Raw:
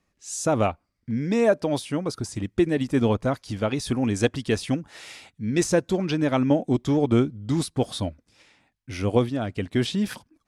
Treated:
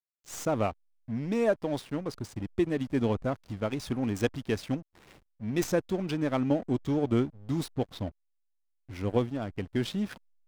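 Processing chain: tracing distortion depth 0.054 ms; 7.74–8.96 s: distance through air 83 m; hysteresis with a dead band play -32 dBFS; trim -6 dB

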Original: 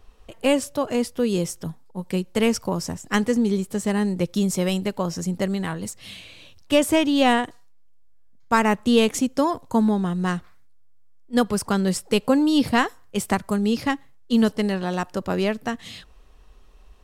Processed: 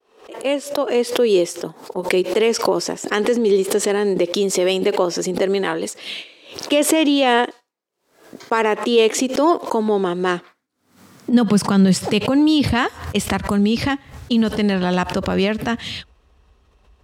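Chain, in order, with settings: fade-in on the opening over 1.93 s; gate -41 dBFS, range -9 dB; treble shelf 8.7 kHz -10 dB; peak limiter -17.5 dBFS, peak gain reduction 11 dB; dynamic bell 3 kHz, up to +5 dB, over -49 dBFS, Q 1; high-pass sweep 380 Hz -> 69 Hz, 10.23–12.98 s; swell ahead of each attack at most 110 dB/s; trim +7.5 dB

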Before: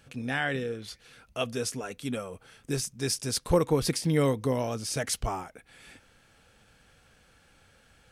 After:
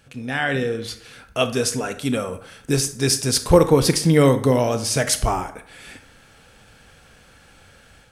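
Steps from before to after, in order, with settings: level rider gain up to 7 dB; on a send: reverberation RT60 0.65 s, pre-delay 23 ms, DRR 10 dB; on the sum: trim +3 dB

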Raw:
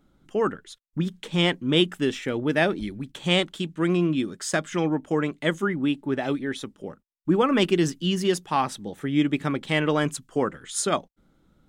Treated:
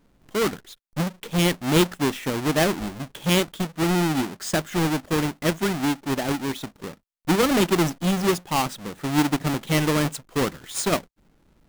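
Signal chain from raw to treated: square wave that keeps the level; trim -3 dB

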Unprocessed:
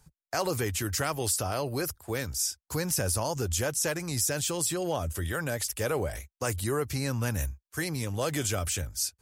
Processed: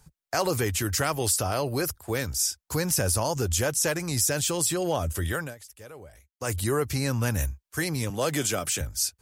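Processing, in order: 5.33–6.55 s: dip -19 dB, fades 0.22 s; 8.10–8.81 s: high-pass 130 Hz 24 dB/octave; trim +3.5 dB

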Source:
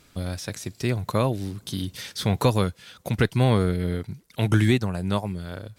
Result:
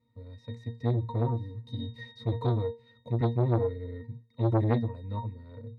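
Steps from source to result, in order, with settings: level rider gain up to 11.5 dB; pitch-class resonator A#, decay 0.26 s; transformer saturation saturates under 540 Hz

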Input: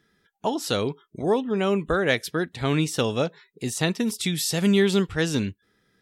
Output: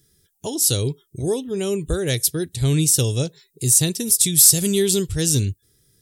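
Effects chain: FFT filter 130 Hz 0 dB, 210 Hz -16 dB, 370 Hz -9 dB, 680 Hz -20 dB, 1.2 kHz -24 dB, 2.3 kHz -17 dB, 9.2 kHz +9 dB; in parallel at -7 dB: hard clipper -20 dBFS, distortion -16 dB; on the sum: trim +8.5 dB

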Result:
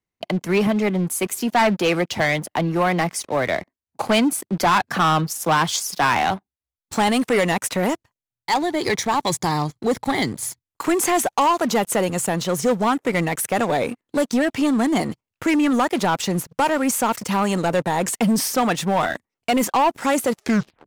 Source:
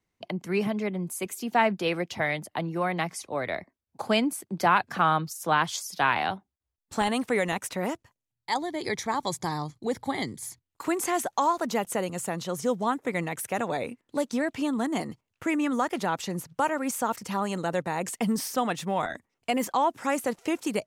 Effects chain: tape stop on the ending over 0.49 s; waveshaping leveller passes 3; trim -1 dB

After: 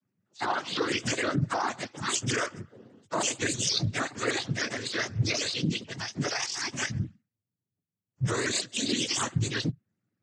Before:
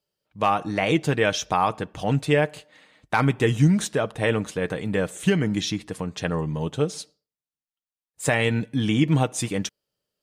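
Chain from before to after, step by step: spectrum inverted on a logarithmic axis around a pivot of 940 Hz; peak limiter -19 dBFS, peak gain reduction 11 dB; noise-vocoded speech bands 16; vibrato with a chosen wave saw up 6.5 Hz, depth 160 cents

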